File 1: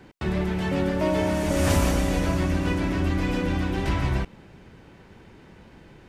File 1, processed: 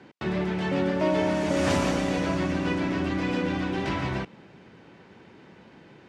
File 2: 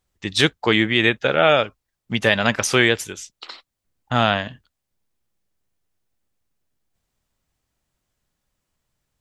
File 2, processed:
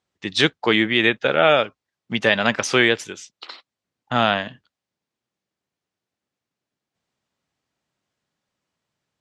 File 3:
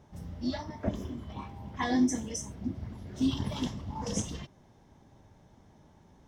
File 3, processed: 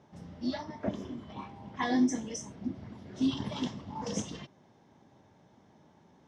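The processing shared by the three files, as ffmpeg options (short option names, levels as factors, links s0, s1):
-af "highpass=150,lowpass=5900"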